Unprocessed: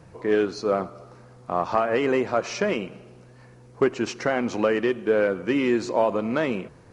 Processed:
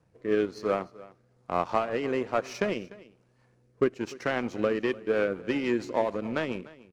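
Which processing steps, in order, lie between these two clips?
power-law waveshaper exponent 1.4; rotary cabinet horn 1.1 Hz, later 7 Hz, at 4.59 s; on a send: delay 297 ms -20 dB

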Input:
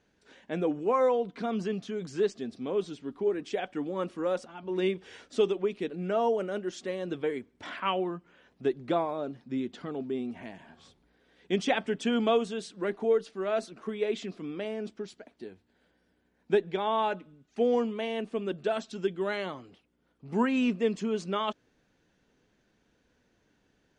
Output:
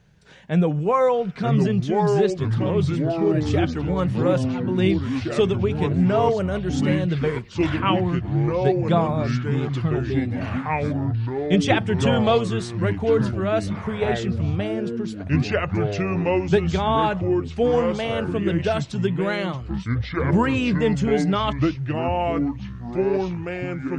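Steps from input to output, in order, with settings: resonant low shelf 200 Hz +9 dB, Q 3; ever faster or slower copies 799 ms, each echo -4 st, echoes 3; trim +7.5 dB

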